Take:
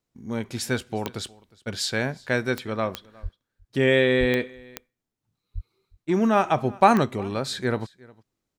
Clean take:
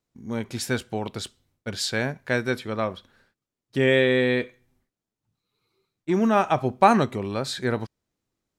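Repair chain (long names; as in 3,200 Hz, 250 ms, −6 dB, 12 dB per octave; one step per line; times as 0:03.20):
click removal
0:03.22–0:03.34: high-pass filter 140 Hz 24 dB per octave
0:04.19–0:04.31: high-pass filter 140 Hz 24 dB per octave
0:05.54–0:05.66: high-pass filter 140 Hz 24 dB per octave
echo removal 360 ms −24 dB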